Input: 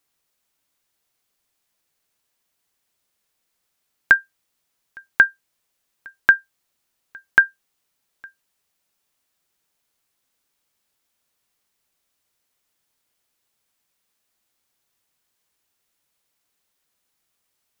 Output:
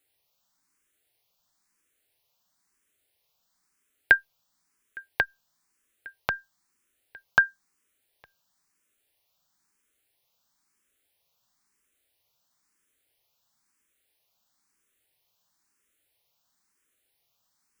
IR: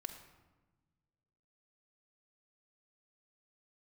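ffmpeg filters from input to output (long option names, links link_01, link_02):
-filter_complex "[0:a]asplit=2[link_01][link_02];[link_02]afreqshift=1[link_03];[link_01][link_03]amix=inputs=2:normalize=1,volume=2.5dB"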